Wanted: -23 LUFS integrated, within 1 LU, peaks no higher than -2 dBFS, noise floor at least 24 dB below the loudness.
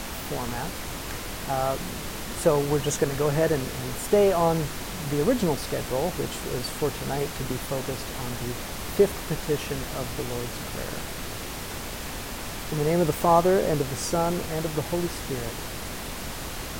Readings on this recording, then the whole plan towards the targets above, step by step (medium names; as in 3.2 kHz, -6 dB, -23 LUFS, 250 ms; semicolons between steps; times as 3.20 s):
noise floor -35 dBFS; noise floor target -51 dBFS; loudness -27.0 LUFS; peak level -6.5 dBFS; loudness target -23.0 LUFS
-> noise print and reduce 16 dB; trim +4 dB